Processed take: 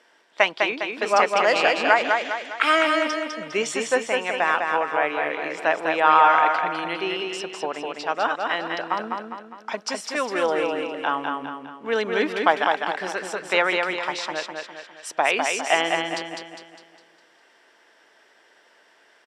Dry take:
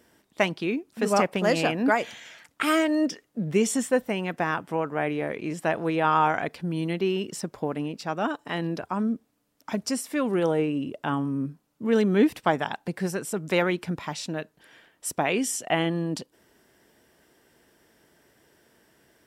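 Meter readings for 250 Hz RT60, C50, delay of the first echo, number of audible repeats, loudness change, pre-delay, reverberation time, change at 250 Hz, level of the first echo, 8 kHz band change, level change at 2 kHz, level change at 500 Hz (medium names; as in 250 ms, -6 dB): no reverb, no reverb, 203 ms, 5, +4.0 dB, no reverb, no reverb, -6.5 dB, -4.0 dB, -0.5 dB, +8.5 dB, +2.5 dB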